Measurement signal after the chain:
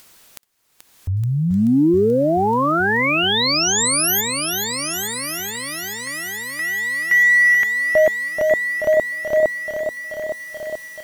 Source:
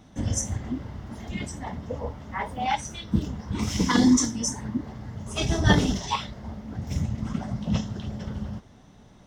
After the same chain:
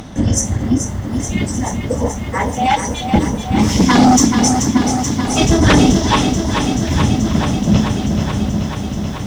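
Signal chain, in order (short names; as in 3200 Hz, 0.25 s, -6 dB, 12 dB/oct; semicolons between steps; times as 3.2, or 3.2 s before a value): dynamic EQ 300 Hz, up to +6 dB, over -38 dBFS, Q 1; upward compressor, threshold -35 dBFS; sine folder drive 10 dB, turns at -2.5 dBFS; on a send: thin delay 1.169 s, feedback 35%, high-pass 2000 Hz, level -14.5 dB; on the sum: lo-fi delay 0.432 s, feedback 80%, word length 7-bit, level -7 dB; gain -3 dB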